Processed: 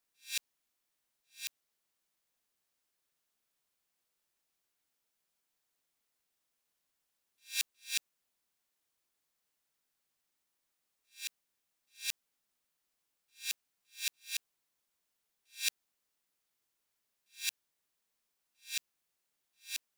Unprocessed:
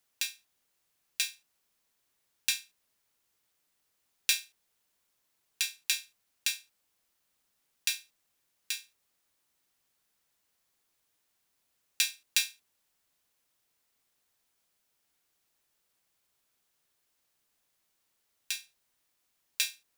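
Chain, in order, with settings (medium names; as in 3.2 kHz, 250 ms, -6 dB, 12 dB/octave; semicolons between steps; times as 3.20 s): reverse the whole clip; peaking EQ 92 Hz -12 dB 0.34 oct; trim -6.5 dB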